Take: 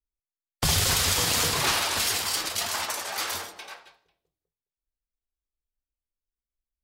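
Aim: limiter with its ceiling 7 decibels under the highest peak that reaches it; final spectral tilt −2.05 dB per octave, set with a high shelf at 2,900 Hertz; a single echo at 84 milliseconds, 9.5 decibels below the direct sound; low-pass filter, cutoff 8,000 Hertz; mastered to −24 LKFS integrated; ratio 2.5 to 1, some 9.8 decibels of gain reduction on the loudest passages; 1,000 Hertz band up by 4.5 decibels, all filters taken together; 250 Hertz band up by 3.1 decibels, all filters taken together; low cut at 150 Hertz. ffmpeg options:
ffmpeg -i in.wav -af "highpass=150,lowpass=8000,equalizer=frequency=250:width_type=o:gain=5.5,equalizer=frequency=1000:width_type=o:gain=4.5,highshelf=frequency=2900:gain=5.5,acompressor=threshold=-33dB:ratio=2.5,alimiter=limit=-23dB:level=0:latency=1,aecho=1:1:84:0.335,volume=7.5dB" out.wav

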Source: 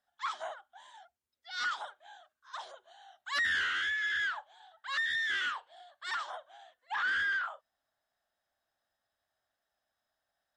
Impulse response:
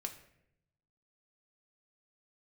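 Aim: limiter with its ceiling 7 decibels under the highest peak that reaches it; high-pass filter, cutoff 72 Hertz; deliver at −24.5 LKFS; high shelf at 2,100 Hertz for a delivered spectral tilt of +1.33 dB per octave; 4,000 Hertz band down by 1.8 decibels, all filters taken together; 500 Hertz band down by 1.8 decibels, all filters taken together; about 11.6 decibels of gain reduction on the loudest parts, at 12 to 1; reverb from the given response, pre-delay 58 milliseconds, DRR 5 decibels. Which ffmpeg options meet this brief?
-filter_complex "[0:a]highpass=72,equalizer=frequency=500:width_type=o:gain=-3,highshelf=frequency=2100:gain=4,equalizer=frequency=4000:width_type=o:gain=-6,acompressor=threshold=-40dB:ratio=12,alimiter=level_in=15dB:limit=-24dB:level=0:latency=1,volume=-15dB,asplit=2[link_01][link_02];[1:a]atrim=start_sample=2205,adelay=58[link_03];[link_02][link_03]afir=irnorm=-1:irlink=0,volume=-3.5dB[link_04];[link_01][link_04]amix=inputs=2:normalize=0,volume=21dB"

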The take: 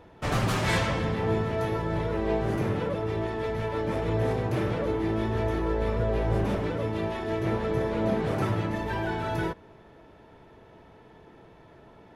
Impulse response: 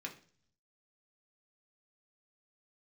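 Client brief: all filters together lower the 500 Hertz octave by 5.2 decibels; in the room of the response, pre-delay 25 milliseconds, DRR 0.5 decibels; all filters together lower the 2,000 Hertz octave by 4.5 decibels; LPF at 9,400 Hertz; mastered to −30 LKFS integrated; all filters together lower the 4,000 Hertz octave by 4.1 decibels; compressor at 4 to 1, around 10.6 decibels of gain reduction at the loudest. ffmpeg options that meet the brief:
-filter_complex "[0:a]lowpass=9400,equalizer=frequency=500:width_type=o:gain=-6.5,equalizer=frequency=2000:width_type=o:gain=-4.5,equalizer=frequency=4000:width_type=o:gain=-3.5,acompressor=threshold=-36dB:ratio=4,asplit=2[link_01][link_02];[1:a]atrim=start_sample=2205,adelay=25[link_03];[link_02][link_03]afir=irnorm=-1:irlink=0,volume=0.5dB[link_04];[link_01][link_04]amix=inputs=2:normalize=0,volume=7dB"

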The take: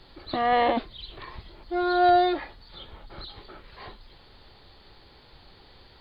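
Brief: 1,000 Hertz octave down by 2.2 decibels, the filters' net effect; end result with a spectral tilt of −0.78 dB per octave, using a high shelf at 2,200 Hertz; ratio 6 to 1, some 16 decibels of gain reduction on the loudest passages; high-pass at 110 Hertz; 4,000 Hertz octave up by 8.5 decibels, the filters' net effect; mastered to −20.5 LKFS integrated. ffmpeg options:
ffmpeg -i in.wav -af "highpass=110,equalizer=frequency=1000:width_type=o:gain=-5.5,highshelf=frequency=2200:gain=6.5,equalizer=frequency=4000:width_type=o:gain=4.5,acompressor=threshold=-35dB:ratio=6,volume=19.5dB" out.wav

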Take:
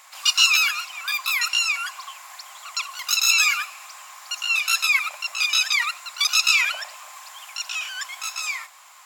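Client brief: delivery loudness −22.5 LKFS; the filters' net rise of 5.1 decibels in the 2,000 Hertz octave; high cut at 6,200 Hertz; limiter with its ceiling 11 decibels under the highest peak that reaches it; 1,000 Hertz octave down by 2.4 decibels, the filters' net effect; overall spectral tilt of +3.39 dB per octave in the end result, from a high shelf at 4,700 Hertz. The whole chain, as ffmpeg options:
ffmpeg -i in.wav -af "lowpass=6200,equalizer=frequency=1000:width_type=o:gain=-7.5,equalizer=frequency=2000:width_type=o:gain=6.5,highshelf=frequency=4700:gain=6.5,volume=-2dB,alimiter=limit=-13dB:level=0:latency=1" out.wav

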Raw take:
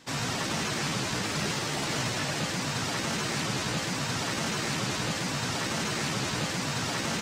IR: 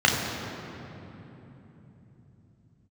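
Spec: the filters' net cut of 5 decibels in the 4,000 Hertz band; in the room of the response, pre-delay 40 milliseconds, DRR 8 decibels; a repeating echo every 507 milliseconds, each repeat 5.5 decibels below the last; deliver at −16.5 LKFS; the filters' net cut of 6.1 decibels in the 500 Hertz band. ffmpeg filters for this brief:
-filter_complex "[0:a]equalizer=frequency=500:width_type=o:gain=-8,equalizer=frequency=4000:width_type=o:gain=-6.5,aecho=1:1:507|1014|1521|2028|2535|3042|3549:0.531|0.281|0.149|0.079|0.0419|0.0222|0.0118,asplit=2[link_01][link_02];[1:a]atrim=start_sample=2205,adelay=40[link_03];[link_02][link_03]afir=irnorm=-1:irlink=0,volume=-27dB[link_04];[link_01][link_04]amix=inputs=2:normalize=0,volume=13dB"

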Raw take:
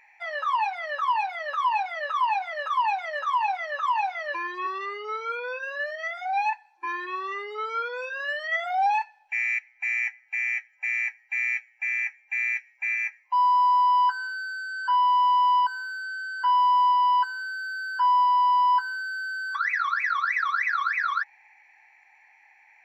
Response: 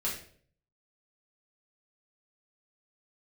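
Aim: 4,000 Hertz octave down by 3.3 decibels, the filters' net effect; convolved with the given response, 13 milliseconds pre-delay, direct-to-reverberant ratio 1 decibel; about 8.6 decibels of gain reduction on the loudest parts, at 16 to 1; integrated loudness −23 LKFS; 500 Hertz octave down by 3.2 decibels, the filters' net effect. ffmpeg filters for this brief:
-filter_complex "[0:a]equalizer=frequency=500:width_type=o:gain=-4,equalizer=frequency=4000:width_type=o:gain=-5,acompressor=threshold=-28dB:ratio=16,asplit=2[link_01][link_02];[1:a]atrim=start_sample=2205,adelay=13[link_03];[link_02][link_03]afir=irnorm=-1:irlink=0,volume=-6dB[link_04];[link_01][link_04]amix=inputs=2:normalize=0,volume=6dB"

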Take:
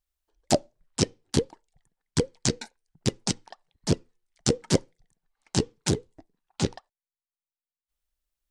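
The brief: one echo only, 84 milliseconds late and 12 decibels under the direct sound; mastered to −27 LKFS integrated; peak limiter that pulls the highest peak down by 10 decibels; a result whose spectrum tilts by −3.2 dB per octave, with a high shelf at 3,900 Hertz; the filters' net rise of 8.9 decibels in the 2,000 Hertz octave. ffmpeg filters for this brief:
ffmpeg -i in.wav -af "equalizer=frequency=2000:width_type=o:gain=9,highshelf=frequency=3900:gain=8.5,alimiter=limit=-7.5dB:level=0:latency=1,aecho=1:1:84:0.251,volume=1.5dB" out.wav

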